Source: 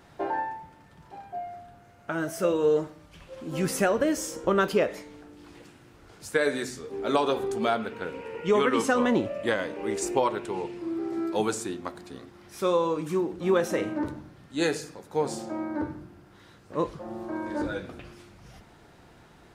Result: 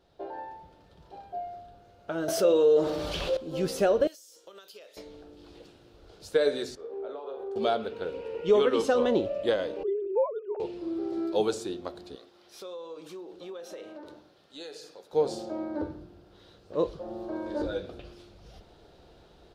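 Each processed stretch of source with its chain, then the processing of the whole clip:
2.28–3.37 s: bass shelf 180 Hz -11 dB + level flattener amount 70%
4.07–4.97 s: differentiator + compression 16:1, threshold -42 dBFS
6.75–7.56 s: three-band isolator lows -17 dB, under 360 Hz, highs -19 dB, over 2 kHz + compression 8:1, threshold -36 dBFS + doubling 43 ms -6.5 dB
9.83–10.60 s: formants replaced by sine waves + peaking EQ 2.4 kHz -15 dB 2.1 oct
12.15–15.13 s: high-pass 750 Hz 6 dB/octave + compression 5:1, threshold -39 dBFS
whole clip: graphic EQ 125/250/500/1000/2000/4000/8000 Hz -9/-8/+3/-8/-12/+7/-5 dB; level rider gain up to 9.5 dB; treble shelf 4.5 kHz -11.5 dB; trim -5.5 dB

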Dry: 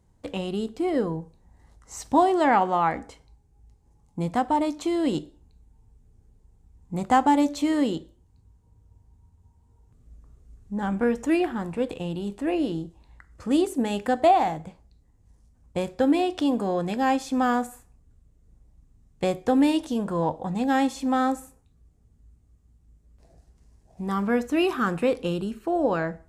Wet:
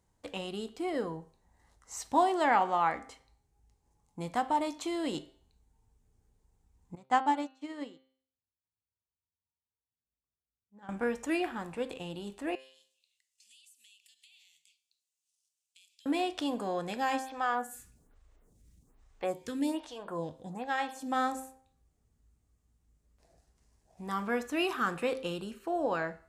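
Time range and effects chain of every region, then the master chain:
6.95–10.89 s: high-pass 84 Hz + distance through air 60 m + upward expansion 2.5:1, over -36 dBFS
12.55–16.06 s: elliptic high-pass 2.7 kHz, stop band 50 dB + compression, threshold -55 dBFS
17.19–21.12 s: upward compressor, threshold -32 dBFS + lamp-driven phase shifter 1.2 Hz
whole clip: bass shelf 450 Hz -11 dB; de-hum 131.5 Hz, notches 36; trim -2.5 dB

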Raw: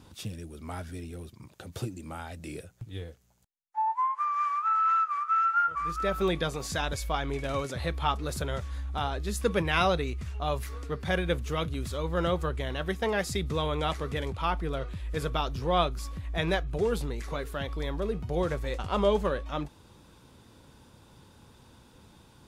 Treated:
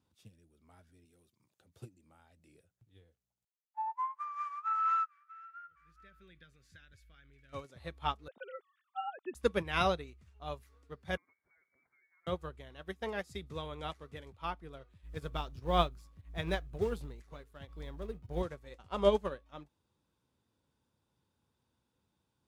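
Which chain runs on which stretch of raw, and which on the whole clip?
1.05–1.61 s: high-pass 160 Hz 6 dB/octave + treble shelf 3.6 kHz +7 dB
5.06–7.53 s: FFT filter 100 Hz 0 dB, 580 Hz -14 dB, 920 Hz -26 dB, 1.5 kHz +2 dB, 7.1 kHz -9 dB + compression 4:1, threshold -31 dBFS
8.28–9.35 s: formants replaced by sine waves + high-pass 210 Hz + distance through air 92 m
11.17–12.27 s: steep high-pass 410 Hz 72 dB/octave + compression 12:1, threshold -43 dBFS + frequency inversion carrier 2.7 kHz
15.03–18.42 s: companding laws mixed up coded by A + bass shelf 120 Hz +8.5 dB
whole clip: high-pass 55 Hz; upward expansion 2.5:1, over -37 dBFS

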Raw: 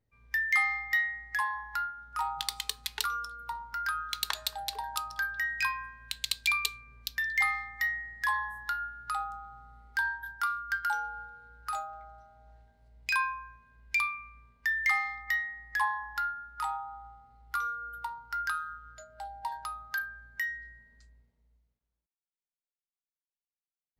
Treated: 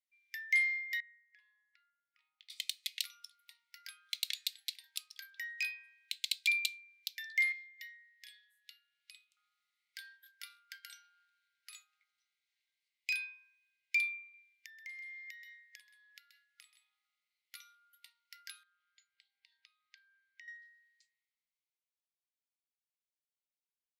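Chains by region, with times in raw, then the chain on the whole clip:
1.00–2.50 s: tape spacing loss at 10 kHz 34 dB + compression 2:1, threshold -39 dBFS + rippled Chebyshev high-pass 170 Hz, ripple 9 dB
7.52–9.37 s: ladder high-pass 2.1 kHz, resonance 40% + tape noise reduction on one side only encoder only
14.21–17.05 s: delay 129 ms -9 dB + compression 12:1, threshold -40 dBFS
18.63–20.48 s: compression 4:1, threshold -44 dBFS + distance through air 140 m
whole clip: Chebyshev high-pass 2.1 kHz, order 5; tilt EQ -1.5 dB/octave

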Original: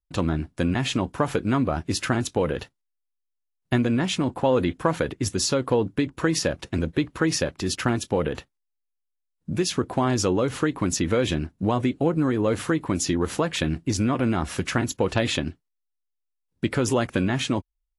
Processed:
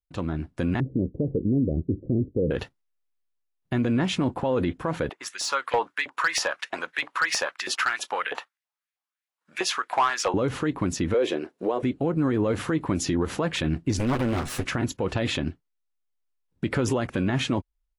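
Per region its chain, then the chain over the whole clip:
0.80–2.51 s: steep low-pass 510 Hz 48 dB/octave + tape noise reduction on one side only decoder only
5.09–10.34 s: LFO high-pass saw up 3.1 Hz 690–2200 Hz + hard clipper -18 dBFS
11.14–11.83 s: resonant high-pass 430 Hz, resonance Q 3.1 + tape noise reduction on one side only encoder only
13.99–14.65 s: comb filter that takes the minimum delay 8.1 ms + treble shelf 5.7 kHz +11.5 dB + tape noise reduction on one side only encoder only
whole clip: treble shelf 4.5 kHz -9.5 dB; level rider gain up to 11.5 dB; peak limiter -9.5 dBFS; trim -6 dB

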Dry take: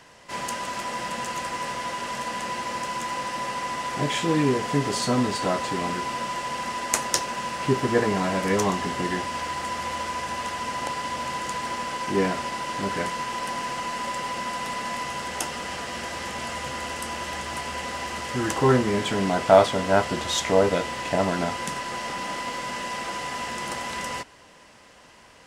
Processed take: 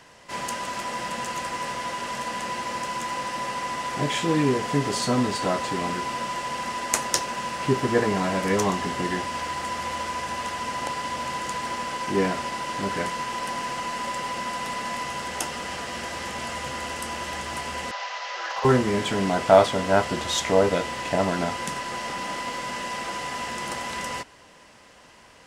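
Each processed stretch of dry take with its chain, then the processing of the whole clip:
17.91–18.65 s: CVSD coder 32 kbps + steep high-pass 560 Hz + hard clipper -22.5 dBFS
whole clip: none

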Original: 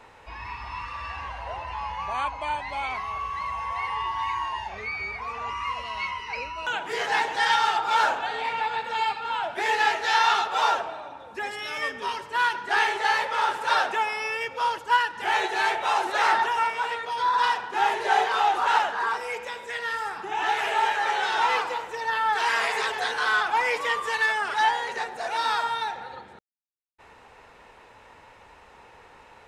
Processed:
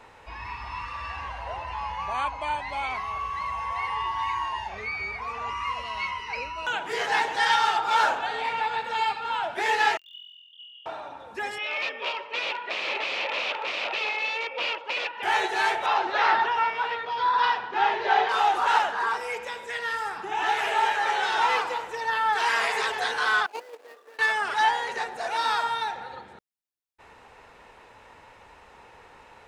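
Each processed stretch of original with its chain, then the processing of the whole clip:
9.97–10.86 s: formants replaced by sine waves + brick-wall FIR high-pass 2.8 kHz + flutter echo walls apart 4 m, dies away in 1.3 s
11.58–15.23 s: integer overflow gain 23.5 dB + cabinet simulation 450–3800 Hz, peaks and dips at 560 Hz +8 dB, 1.6 kHz -6 dB, 2.5 kHz +10 dB
15.86–18.29 s: low-pass 4.7 kHz 24 dB/octave + tape noise reduction on one side only decoder only
23.46–24.19 s: median filter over 41 samples + high-pass 380 Hz 24 dB/octave + gate -31 dBFS, range -12 dB
whole clip: none

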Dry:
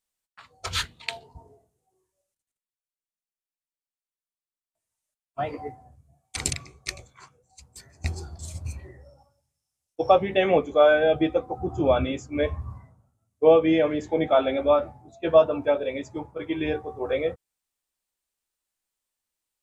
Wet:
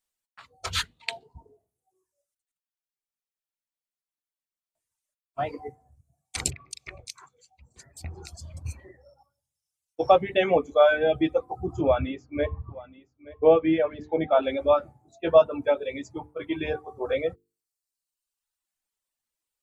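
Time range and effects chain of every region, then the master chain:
6.50–8.57 s: bands offset in time lows, highs 210 ms, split 2.9 kHz + compression 2.5:1, threshold -34 dBFS
11.81–14.43 s: distance through air 250 m + delay 876 ms -19 dB
whole clip: hum notches 50/100/150/200/250/300/350/400/450 Hz; reverb removal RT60 1.1 s

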